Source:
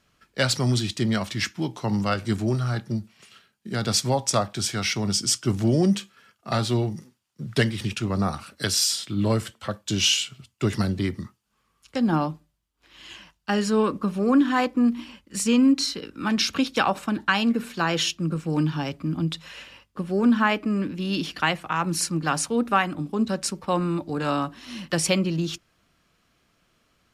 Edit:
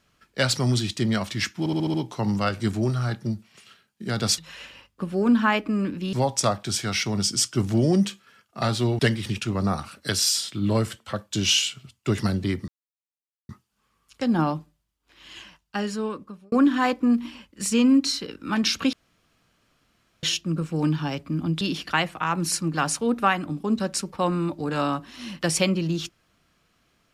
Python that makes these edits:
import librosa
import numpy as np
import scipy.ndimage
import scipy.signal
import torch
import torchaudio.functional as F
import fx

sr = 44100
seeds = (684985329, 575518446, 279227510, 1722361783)

y = fx.edit(x, sr, fx.stutter(start_s=1.59, slice_s=0.07, count=6),
    fx.cut(start_s=6.89, length_s=0.65),
    fx.insert_silence(at_s=11.23, length_s=0.81),
    fx.fade_out_span(start_s=13.12, length_s=1.14),
    fx.room_tone_fill(start_s=16.67, length_s=1.3),
    fx.move(start_s=19.35, length_s=1.75, to_s=4.03), tone=tone)